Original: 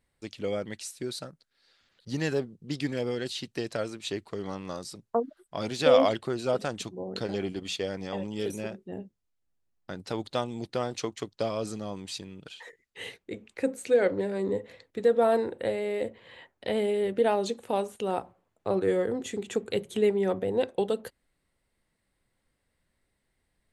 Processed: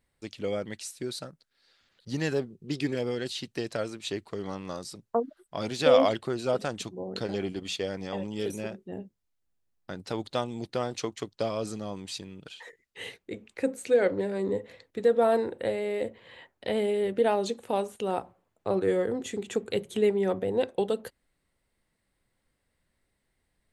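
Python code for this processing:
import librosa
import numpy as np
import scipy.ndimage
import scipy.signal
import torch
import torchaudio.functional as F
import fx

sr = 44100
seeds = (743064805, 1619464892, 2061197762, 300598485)

y = fx.small_body(x, sr, hz=(380.0, 2500.0), ring_ms=45, db=9, at=(2.5, 2.95))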